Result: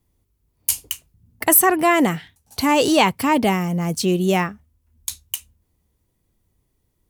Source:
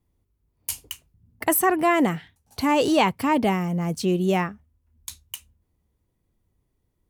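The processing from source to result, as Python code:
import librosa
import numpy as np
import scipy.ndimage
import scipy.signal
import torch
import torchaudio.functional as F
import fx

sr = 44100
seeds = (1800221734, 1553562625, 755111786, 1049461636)

y = fx.high_shelf(x, sr, hz=3300.0, db=7.0)
y = y * 10.0 ** (3.0 / 20.0)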